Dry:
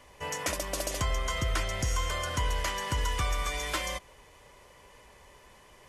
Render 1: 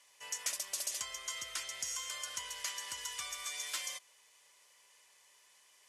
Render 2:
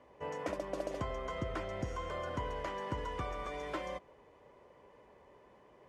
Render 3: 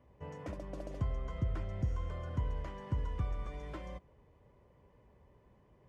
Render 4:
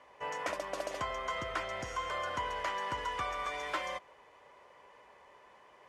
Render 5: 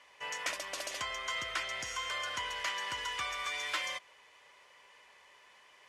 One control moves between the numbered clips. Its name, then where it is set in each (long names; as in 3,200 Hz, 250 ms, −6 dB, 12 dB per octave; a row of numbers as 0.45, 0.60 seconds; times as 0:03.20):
resonant band-pass, frequency: 7,700, 370, 130, 920, 2,400 Hertz